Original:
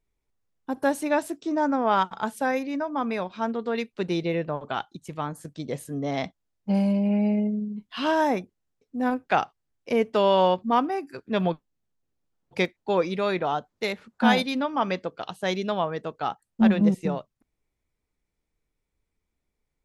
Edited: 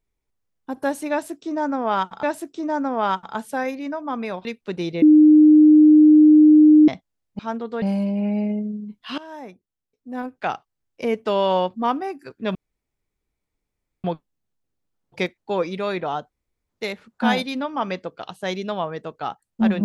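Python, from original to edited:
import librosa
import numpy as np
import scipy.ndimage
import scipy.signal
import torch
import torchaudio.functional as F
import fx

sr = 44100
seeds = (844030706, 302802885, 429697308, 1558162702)

y = fx.edit(x, sr, fx.repeat(start_s=1.11, length_s=1.12, count=2),
    fx.move(start_s=3.33, length_s=0.43, to_s=6.7),
    fx.bleep(start_s=4.33, length_s=1.86, hz=305.0, db=-7.5),
    fx.fade_in_from(start_s=8.06, length_s=1.87, floor_db=-20.0),
    fx.insert_room_tone(at_s=11.43, length_s=1.49),
    fx.insert_room_tone(at_s=13.69, length_s=0.39), tone=tone)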